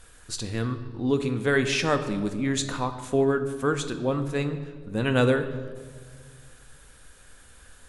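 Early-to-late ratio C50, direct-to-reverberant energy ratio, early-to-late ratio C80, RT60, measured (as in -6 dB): 10.5 dB, 7.0 dB, 12.0 dB, 1.7 s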